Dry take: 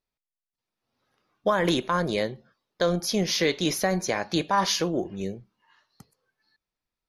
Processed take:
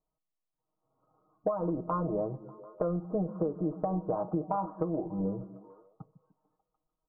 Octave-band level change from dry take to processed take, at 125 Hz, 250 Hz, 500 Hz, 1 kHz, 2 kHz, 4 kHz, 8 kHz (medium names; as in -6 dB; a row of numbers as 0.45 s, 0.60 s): -3.5 dB, -4.5 dB, -6.0 dB, -7.5 dB, under -25 dB, under -40 dB, under -40 dB